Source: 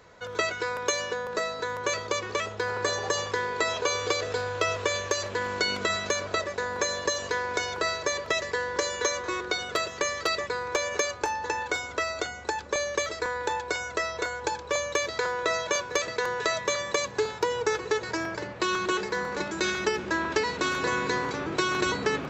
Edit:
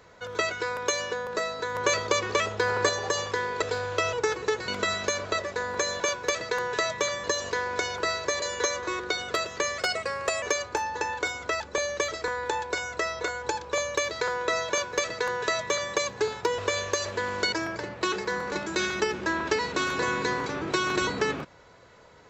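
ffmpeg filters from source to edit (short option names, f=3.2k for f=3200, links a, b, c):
-filter_complex "[0:a]asplit=15[a][b][c][d][e][f][g][h][i][j][k][l][m][n][o];[a]atrim=end=1.752[p];[b]atrim=start=1.748:end=2.892,asetpts=PTS-STARTPTS,volume=4dB[q];[c]atrim=start=2.888:end=3.622[r];[d]atrim=start=4.248:end=4.762[s];[e]atrim=start=17.558:end=18.112[t];[f]atrim=start=5.698:end=7.022[u];[g]atrim=start=15.668:end=16.912[v];[h]atrim=start=7.018:end=8.202[w];[i]atrim=start=8.828:end=10.194[x];[j]atrim=start=10.19:end=10.91,asetpts=PTS-STARTPTS,asetrate=49392,aresample=44100[y];[k]atrim=start=10.906:end=12.092[z];[l]atrim=start=12.578:end=17.562[aa];[m]atrim=start=4.758:end=5.702[ab];[n]atrim=start=18.108:end=18.712[ac];[o]atrim=start=18.968[ad];[p][q]acrossfade=d=0.004:c1=hsin:c2=hsin[ae];[ae][r]acrossfade=d=0.004:c1=hsin:c2=hsin[af];[af][s]acrossfade=d=0.004:c1=hsin:c2=hsin[ag];[ag][t]acrossfade=d=0.004:c1=hsin:c2=hsin[ah];[ah][u]acrossfade=d=0.004:c1=hsin:c2=hsin[ai];[ai][v]acrossfade=d=0.004:c1=hsin:c2=hsin[aj];[aj][w]acrossfade=d=0.004:c1=hsin:c2=hsin[ak];[ak][x]acrossfade=d=0.004:c1=hsin:c2=hsin[al];[al][y]acrossfade=d=0.004:c1=hsin:c2=hsin[am];[am][z]acrossfade=d=0.004:c1=hsin:c2=hsin[an];[an][aa]acrossfade=d=0.004:c1=hsin:c2=hsin[ao];[ao][ab]acrossfade=d=0.004:c1=hsin:c2=hsin[ap];[ap][ac]acrossfade=d=0.004:c1=hsin:c2=hsin[aq];[aq][ad]acrossfade=d=0.004:c1=hsin:c2=hsin"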